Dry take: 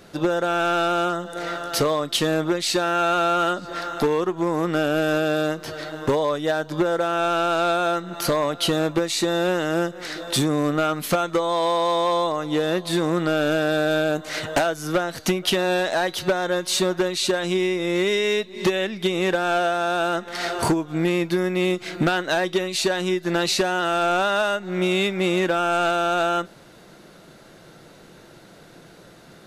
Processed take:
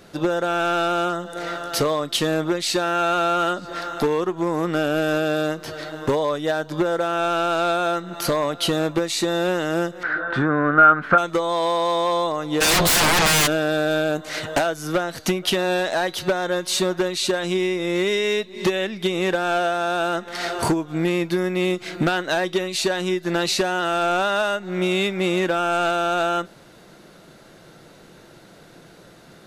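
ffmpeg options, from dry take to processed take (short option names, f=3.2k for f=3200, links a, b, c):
-filter_complex "[0:a]asettb=1/sr,asplit=3[a][b][c];[a]atrim=end=10.034[d];[b]atrim=start=10.03:end=11.18,asetpts=PTS-STARTPTS,afade=t=in:d=0.004:c=qsin,afade=t=out:st=1.146:d=0.004:c=qsin,lowpass=f=1.5k:t=q:w=8.7[e];[c]atrim=start=11.176[f];[d][e]acrossfade=d=0.004:c1=hsin:c2=qsin[g];[g][f]acrossfade=d=0.004:c1=qsin:c2=hsin,asplit=3[h][i][j];[h]afade=t=out:st=12.6:d=0.02[k];[i]aeval=exprs='0.2*sin(PI/2*7.94*val(0)/0.2)':c=same,afade=t=in:st=12.6:d=0.02,afade=t=out:st=13.46:d=0.02[l];[j]afade=t=in:st=13.46:d=0.02[m];[k][l][m]amix=inputs=3:normalize=0"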